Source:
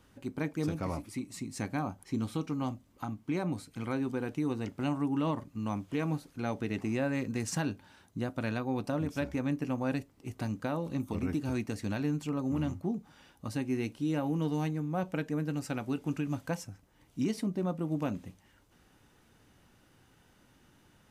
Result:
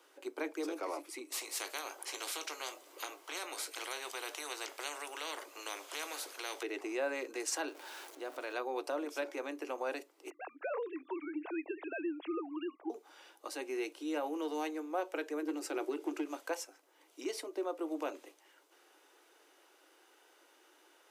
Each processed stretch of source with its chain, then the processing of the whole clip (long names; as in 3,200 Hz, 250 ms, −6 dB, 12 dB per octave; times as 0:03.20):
0:01.32–0:06.63: double-tracking delay 20 ms −13.5 dB + every bin compressed towards the loudest bin 4 to 1
0:07.68–0:08.54: converter with a step at zero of −46 dBFS + downward compressor 3 to 1, threshold −36 dBFS + one half of a high-frequency compander decoder only
0:10.30–0:12.90: three sine waves on the formant tracks + Butterworth high-pass 280 Hz + downward compressor 2 to 1, threshold −36 dBFS
0:15.42–0:16.25: parametric band 340 Hz +13.5 dB 0.48 octaves + hard clipping −20.5 dBFS
whole clip: notch filter 1,800 Hz, Q 23; brickwall limiter −26 dBFS; Butterworth high-pass 320 Hz 72 dB per octave; level +2 dB